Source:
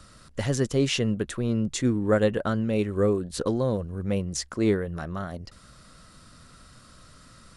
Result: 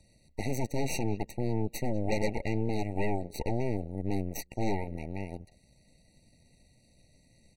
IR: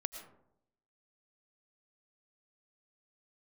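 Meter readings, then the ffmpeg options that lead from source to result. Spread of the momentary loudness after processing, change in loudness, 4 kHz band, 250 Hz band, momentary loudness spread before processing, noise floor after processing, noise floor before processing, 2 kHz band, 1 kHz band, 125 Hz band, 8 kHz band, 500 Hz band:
7 LU, -7.5 dB, -12.0 dB, -7.5 dB, 10 LU, -65 dBFS, -53 dBFS, -6.0 dB, -1.5 dB, -5.5 dB, -8.5 dB, -8.5 dB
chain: -filter_complex "[0:a]asplit=2[a][b];[b]adelay=200,highpass=300,lowpass=3.4k,asoftclip=type=hard:threshold=-20.5dB,volume=-20dB[c];[a][c]amix=inputs=2:normalize=0,aeval=exprs='0.299*(cos(1*acos(clip(val(0)/0.299,-1,1)))-cos(1*PI/2))+0.0668*(cos(3*acos(clip(val(0)/0.299,-1,1)))-cos(3*PI/2))+0.0237*(cos(5*acos(clip(val(0)/0.299,-1,1)))-cos(5*PI/2))+0.0841*(cos(8*acos(clip(val(0)/0.299,-1,1)))-cos(8*PI/2))':c=same,afftfilt=real='re*eq(mod(floor(b*sr/1024/940),2),0)':imag='im*eq(mod(floor(b*sr/1024/940),2),0)':win_size=1024:overlap=0.75,volume=-7.5dB"

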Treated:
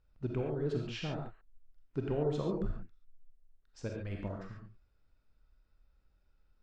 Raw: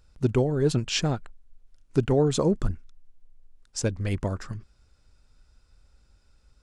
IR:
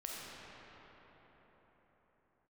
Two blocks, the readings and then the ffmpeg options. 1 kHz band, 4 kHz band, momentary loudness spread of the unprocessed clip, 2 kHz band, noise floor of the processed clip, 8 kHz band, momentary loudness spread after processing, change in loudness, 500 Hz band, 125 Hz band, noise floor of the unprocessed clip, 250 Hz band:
-10.5 dB, -15.5 dB, 14 LU, -11.5 dB, -72 dBFS, -25.0 dB, 14 LU, -11.0 dB, -10.5 dB, -11.5 dB, -63 dBFS, -11.0 dB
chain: -filter_complex "[0:a]lowpass=3.1k[a];[1:a]atrim=start_sample=2205,atrim=end_sample=6615[b];[a][b]afir=irnorm=-1:irlink=0,volume=-8dB"

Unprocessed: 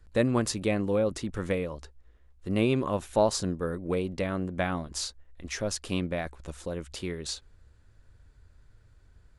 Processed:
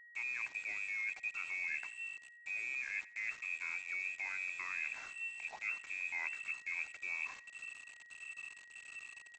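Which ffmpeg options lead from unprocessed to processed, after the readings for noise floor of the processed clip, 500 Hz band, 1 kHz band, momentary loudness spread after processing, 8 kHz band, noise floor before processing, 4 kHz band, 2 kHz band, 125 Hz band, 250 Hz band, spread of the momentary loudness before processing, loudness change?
-59 dBFS, -38.0 dB, -18.0 dB, 10 LU, -18.0 dB, -60 dBFS, -18.0 dB, +3.5 dB, under -40 dB, under -40 dB, 12 LU, -9.5 dB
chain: -af "afftfilt=real='re*pow(10,10/40*sin(2*PI*(1.2*log(max(b,1)*sr/1024/100)/log(2)-(1.6)*(pts-256)/sr)))':imag='im*pow(10,10/40*sin(2*PI*(1.2*log(max(b,1)*sr/1024/100)/log(2)-(1.6)*(pts-256)/sr)))':win_size=1024:overlap=0.75,alimiter=limit=-21dB:level=0:latency=1:release=19,lowpass=f=2.3k:t=q:w=0.5098,lowpass=f=2.3k:t=q:w=0.6013,lowpass=f=2.3k:t=q:w=0.9,lowpass=f=2.3k:t=q:w=2.563,afreqshift=-2700,equalizer=f=500:w=2:g=-14.5,areverse,acompressor=threshold=-40dB:ratio=20,areverse,highpass=f=360:w=0.5412,highpass=f=360:w=1.3066,aresample=16000,aeval=exprs='val(0)*gte(abs(val(0)),0.00211)':c=same,aresample=44100,aeval=exprs='val(0)+0.00112*sin(2*PI*1900*n/s)':c=same,aecho=1:1:87|174|261:0.1|0.034|0.0116,volume=3.5dB"

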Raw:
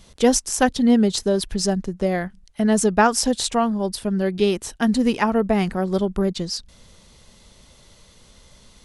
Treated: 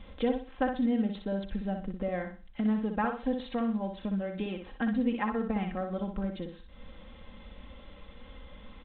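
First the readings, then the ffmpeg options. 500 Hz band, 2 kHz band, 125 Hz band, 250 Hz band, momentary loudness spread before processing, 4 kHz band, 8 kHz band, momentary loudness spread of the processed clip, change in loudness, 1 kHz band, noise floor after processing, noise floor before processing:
-13.0 dB, -12.0 dB, -11.0 dB, -10.0 dB, 7 LU, -20.0 dB, under -40 dB, 22 LU, -11.5 dB, -12.0 dB, -51 dBFS, -52 dBFS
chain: -af "acompressor=threshold=-42dB:ratio=2,lowpass=2.9k,aecho=1:1:3.8:0.68,aecho=1:1:61|122|183|244:0.501|0.15|0.0451|0.0135" -ar 8000 -c:a pcm_mulaw

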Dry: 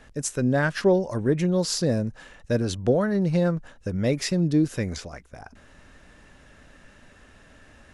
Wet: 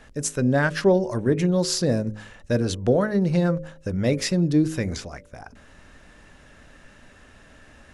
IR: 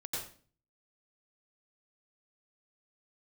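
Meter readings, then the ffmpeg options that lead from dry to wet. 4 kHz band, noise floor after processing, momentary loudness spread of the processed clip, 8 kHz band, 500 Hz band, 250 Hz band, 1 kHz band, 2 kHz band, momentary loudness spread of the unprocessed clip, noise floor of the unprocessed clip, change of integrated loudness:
+2.0 dB, -51 dBFS, 10 LU, +2.0 dB, +1.5 dB, +1.5 dB, +2.0 dB, +2.0 dB, 10 LU, -53 dBFS, +1.5 dB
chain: -af "bandreject=f=52.93:t=h:w=4,bandreject=f=105.86:t=h:w=4,bandreject=f=158.79:t=h:w=4,bandreject=f=211.72:t=h:w=4,bandreject=f=264.65:t=h:w=4,bandreject=f=317.58:t=h:w=4,bandreject=f=370.51:t=h:w=4,bandreject=f=423.44:t=h:w=4,bandreject=f=476.37:t=h:w=4,bandreject=f=529.3:t=h:w=4,bandreject=f=582.23:t=h:w=4,volume=2dB"

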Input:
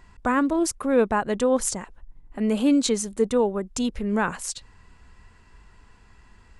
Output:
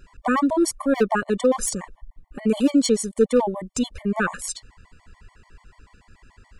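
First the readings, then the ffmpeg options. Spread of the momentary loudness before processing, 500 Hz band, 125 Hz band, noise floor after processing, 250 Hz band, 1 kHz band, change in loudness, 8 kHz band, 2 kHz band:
11 LU, +1.5 dB, +2.0 dB, -60 dBFS, +1.5 dB, +1.0 dB, +1.5 dB, +1.0 dB, +2.0 dB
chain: -af "aeval=exprs='0.237*(abs(mod(val(0)/0.237+3,4)-2)-1)':c=same,afftfilt=real='re*gt(sin(2*PI*6.9*pts/sr)*(1-2*mod(floor(b*sr/1024/590),2)),0)':imag='im*gt(sin(2*PI*6.9*pts/sr)*(1-2*mod(floor(b*sr/1024/590),2)),0)':win_size=1024:overlap=0.75,volume=4.5dB"

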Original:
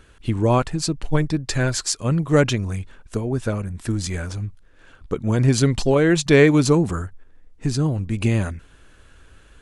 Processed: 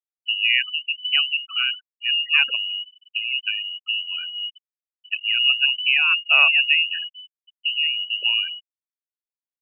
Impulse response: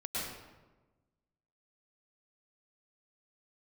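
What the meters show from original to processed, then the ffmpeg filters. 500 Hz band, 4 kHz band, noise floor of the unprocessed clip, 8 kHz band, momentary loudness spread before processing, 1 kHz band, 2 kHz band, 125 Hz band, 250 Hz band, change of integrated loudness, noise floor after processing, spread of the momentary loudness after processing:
-27.0 dB, +14.5 dB, -51 dBFS, under -40 dB, 15 LU, -7.0 dB, +9.0 dB, under -40 dB, under -40 dB, +1.5 dB, under -85 dBFS, 13 LU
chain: -af "lowpass=f=2.6k:t=q:w=0.5098,lowpass=f=2.6k:t=q:w=0.6013,lowpass=f=2.6k:t=q:w=0.9,lowpass=f=2.6k:t=q:w=2.563,afreqshift=-3000,afftfilt=real='re*gte(hypot(re,im),0.1)':imag='im*gte(hypot(re,im),0.1)':win_size=1024:overlap=0.75,highpass=f=1.1k:p=1,volume=-1.5dB"

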